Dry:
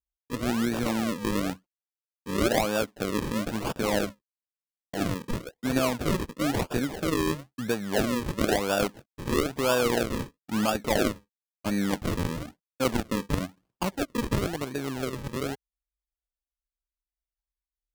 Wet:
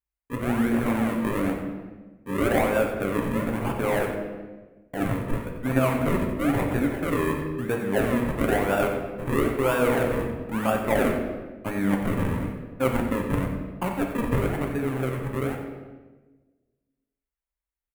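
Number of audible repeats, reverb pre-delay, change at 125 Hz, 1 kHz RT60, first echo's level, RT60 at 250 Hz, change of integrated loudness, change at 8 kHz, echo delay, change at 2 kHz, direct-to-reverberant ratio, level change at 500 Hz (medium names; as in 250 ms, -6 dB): 1, 7 ms, +4.5 dB, 1.1 s, -11.0 dB, 1.6 s, +2.5 dB, -5.5 dB, 91 ms, +3.0 dB, 1.0 dB, +3.5 dB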